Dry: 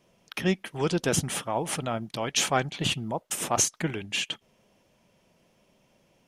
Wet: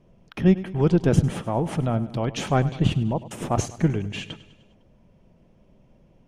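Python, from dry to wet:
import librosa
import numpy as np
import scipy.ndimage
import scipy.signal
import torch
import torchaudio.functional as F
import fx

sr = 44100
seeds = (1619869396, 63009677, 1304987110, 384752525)

p1 = fx.tilt_eq(x, sr, slope=-4.0)
y = p1 + fx.echo_feedback(p1, sr, ms=101, feedback_pct=56, wet_db=-16.5, dry=0)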